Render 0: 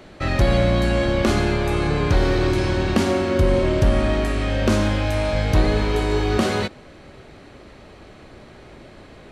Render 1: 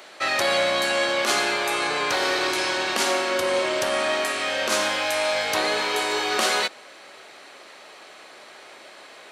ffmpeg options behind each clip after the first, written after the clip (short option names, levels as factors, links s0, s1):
-af "highpass=700,highshelf=f=4200:g=7,alimiter=level_in=3.35:limit=0.891:release=50:level=0:latency=1,volume=0.447"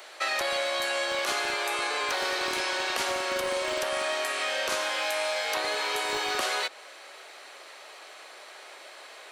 -filter_complex "[0:a]highshelf=f=10000:g=5.5,acrossover=split=220|4400[s0][s1][s2];[s0]acompressor=threshold=0.00398:ratio=4[s3];[s1]acompressor=threshold=0.0562:ratio=4[s4];[s2]acompressor=threshold=0.0141:ratio=4[s5];[s3][s4][s5]amix=inputs=3:normalize=0,acrossover=split=330|1300|4200[s6][s7][s8][s9];[s6]acrusher=bits=5:mix=0:aa=0.000001[s10];[s10][s7][s8][s9]amix=inputs=4:normalize=0,volume=0.841"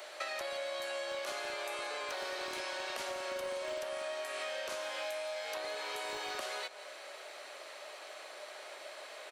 -af "equalizer=f=600:w=6.8:g=9,acompressor=threshold=0.02:ratio=6,aecho=1:1:168|336|504:0.15|0.0479|0.0153,volume=0.708"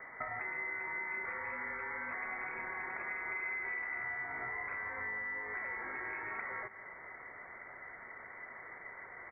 -af "lowpass=f=2200:t=q:w=0.5098,lowpass=f=2200:t=q:w=0.6013,lowpass=f=2200:t=q:w=0.9,lowpass=f=2200:t=q:w=2.563,afreqshift=-2600"